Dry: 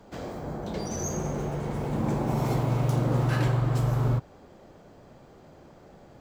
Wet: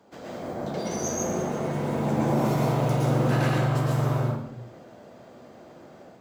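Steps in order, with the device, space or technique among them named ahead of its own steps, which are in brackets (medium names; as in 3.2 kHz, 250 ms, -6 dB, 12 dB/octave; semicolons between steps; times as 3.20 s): peaking EQ 130 Hz -4 dB 1.4 oct; far laptop microphone (reverberation RT60 0.75 s, pre-delay 107 ms, DRR -3.5 dB; high-pass 120 Hz 12 dB/octave; level rider gain up to 4 dB); trim -4.5 dB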